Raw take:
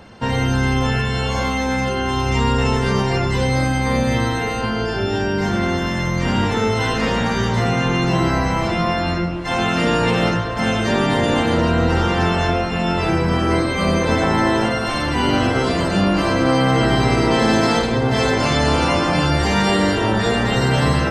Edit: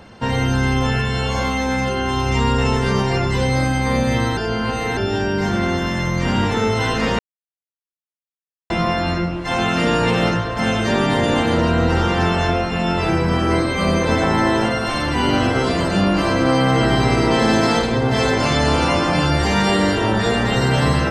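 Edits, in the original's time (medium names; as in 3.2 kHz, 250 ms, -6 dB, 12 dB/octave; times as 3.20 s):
4.37–4.97 s: reverse
7.19–8.70 s: mute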